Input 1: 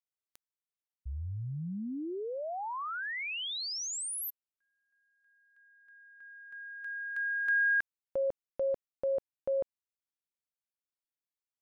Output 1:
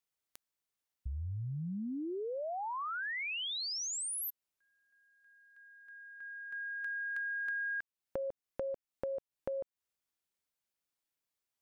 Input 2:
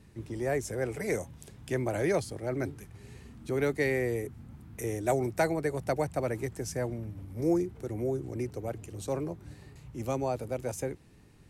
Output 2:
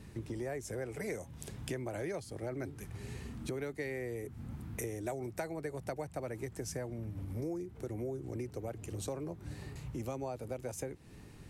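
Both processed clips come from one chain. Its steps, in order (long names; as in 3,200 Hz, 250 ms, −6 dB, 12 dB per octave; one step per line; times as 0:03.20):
downward compressor 6 to 1, threshold −42 dBFS
level +5 dB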